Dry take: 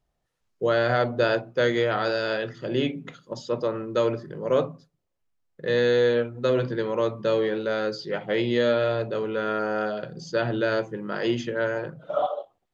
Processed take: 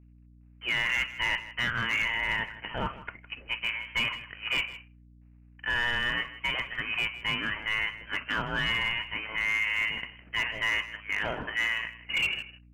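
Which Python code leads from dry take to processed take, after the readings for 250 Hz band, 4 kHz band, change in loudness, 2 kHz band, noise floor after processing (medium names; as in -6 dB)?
-15.0 dB, +5.0 dB, -3.5 dB, +5.0 dB, -55 dBFS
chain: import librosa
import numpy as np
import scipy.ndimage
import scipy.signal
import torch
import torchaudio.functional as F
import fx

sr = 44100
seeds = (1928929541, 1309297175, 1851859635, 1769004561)

p1 = fx.law_mismatch(x, sr, coded='A')
p2 = scipy.signal.sosfilt(scipy.signal.butter(4, 890.0, 'highpass', fs=sr, output='sos'), p1)
p3 = fx.rider(p2, sr, range_db=10, speed_s=2.0)
p4 = p2 + (p3 * 10.0 ** (0.0 / 20.0))
p5 = 10.0 ** (-20.0 / 20.0) * np.tanh(p4 / 10.0 ** (-20.0 / 20.0))
p6 = fx.freq_invert(p5, sr, carrier_hz=3500)
p7 = np.clip(p6, -10.0 ** (-22.0 / 20.0), 10.0 ** (-22.0 / 20.0))
p8 = fx.vibrato(p7, sr, rate_hz=0.63, depth_cents=11.0)
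p9 = p8 + fx.echo_single(p8, sr, ms=159, db=-15.5, dry=0)
y = fx.add_hum(p9, sr, base_hz=60, snr_db=23)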